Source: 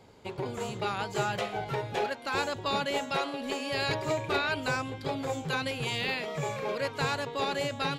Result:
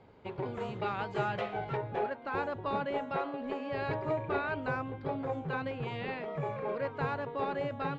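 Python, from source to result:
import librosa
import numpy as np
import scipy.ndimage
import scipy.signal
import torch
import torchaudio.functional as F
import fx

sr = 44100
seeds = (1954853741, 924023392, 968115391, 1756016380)

y = fx.lowpass(x, sr, hz=fx.steps((0.0, 2400.0), (1.77, 1500.0)), slope=12)
y = F.gain(torch.from_numpy(y), -2.0).numpy()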